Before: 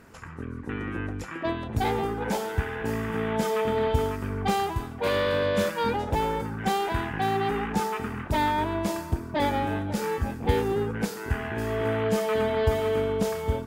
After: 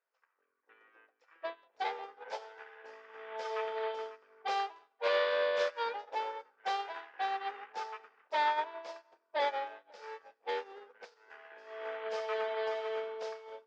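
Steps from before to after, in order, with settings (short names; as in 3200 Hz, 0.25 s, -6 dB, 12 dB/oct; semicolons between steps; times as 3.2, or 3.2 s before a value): elliptic band-pass 510–5300 Hz, stop band 50 dB; dark delay 86 ms, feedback 75%, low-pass 3900 Hz, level -20 dB; upward expander 2.5:1, over -45 dBFS; gain -2.5 dB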